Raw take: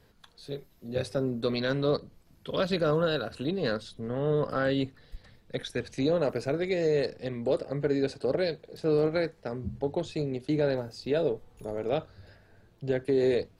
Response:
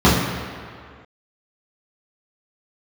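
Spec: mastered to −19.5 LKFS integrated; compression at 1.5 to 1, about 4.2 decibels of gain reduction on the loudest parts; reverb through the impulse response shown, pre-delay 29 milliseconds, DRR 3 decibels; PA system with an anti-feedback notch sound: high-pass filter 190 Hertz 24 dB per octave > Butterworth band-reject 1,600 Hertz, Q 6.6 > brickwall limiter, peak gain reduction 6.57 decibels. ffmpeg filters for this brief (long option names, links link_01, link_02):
-filter_complex "[0:a]acompressor=threshold=-33dB:ratio=1.5,asplit=2[link_01][link_02];[1:a]atrim=start_sample=2205,adelay=29[link_03];[link_02][link_03]afir=irnorm=-1:irlink=0,volume=-29dB[link_04];[link_01][link_04]amix=inputs=2:normalize=0,highpass=frequency=190:width=0.5412,highpass=frequency=190:width=1.3066,asuperstop=centerf=1600:order=8:qfactor=6.6,volume=12dB,alimiter=limit=-9dB:level=0:latency=1"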